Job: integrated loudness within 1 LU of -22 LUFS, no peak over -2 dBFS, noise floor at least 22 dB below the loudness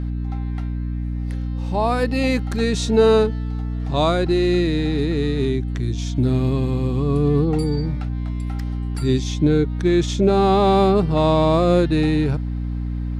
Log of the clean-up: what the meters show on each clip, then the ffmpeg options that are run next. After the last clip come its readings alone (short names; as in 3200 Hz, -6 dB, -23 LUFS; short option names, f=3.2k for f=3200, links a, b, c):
hum 60 Hz; harmonics up to 300 Hz; hum level -22 dBFS; loudness -20.0 LUFS; peak -4.5 dBFS; loudness target -22.0 LUFS
-> -af "bandreject=f=60:t=h:w=6,bandreject=f=120:t=h:w=6,bandreject=f=180:t=h:w=6,bandreject=f=240:t=h:w=6,bandreject=f=300:t=h:w=6"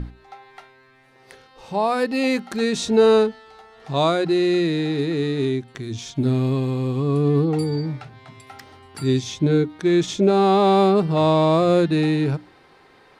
hum none; loudness -20.0 LUFS; peak -5.5 dBFS; loudness target -22.0 LUFS
-> -af "volume=-2dB"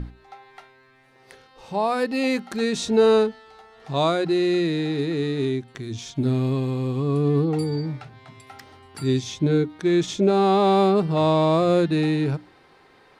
loudness -22.0 LUFS; peak -7.5 dBFS; noise floor -55 dBFS